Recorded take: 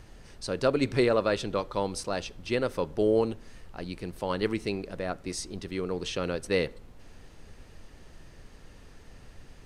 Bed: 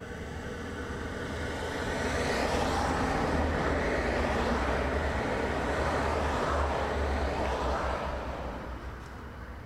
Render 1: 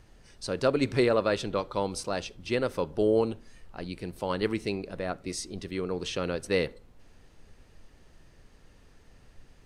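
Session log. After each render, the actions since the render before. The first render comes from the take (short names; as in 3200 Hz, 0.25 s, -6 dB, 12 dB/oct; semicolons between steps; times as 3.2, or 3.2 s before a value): noise print and reduce 6 dB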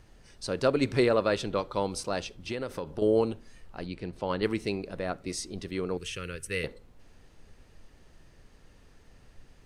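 2.37–3.02 compressor, threshold -29 dBFS; 3.86–4.43 air absorption 86 m; 5.97–6.64 EQ curve 110 Hz 0 dB, 270 Hz -13 dB, 450 Hz -7 dB, 760 Hz -24 dB, 1400 Hz -3 dB, 2800 Hz +1 dB, 4000 Hz -9 dB, 9400 Hz +6 dB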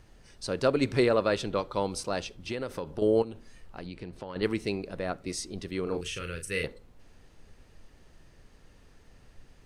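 3.22–4.36 compressor 10:1, threshold -34 dBFS; 5.83–6.63 doubler 36 ms -6 dB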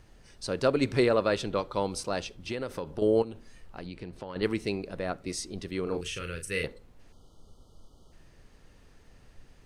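7.12–8.12 spectral delete 1400–2900 Hz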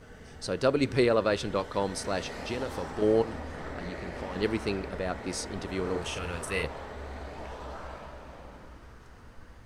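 add bed -10.5 dB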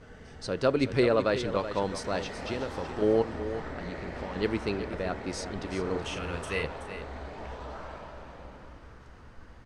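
air absorption 53 m; on a send: echo 0.376 s -11 dB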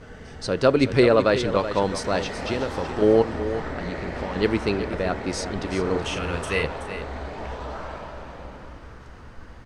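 gain +7 dB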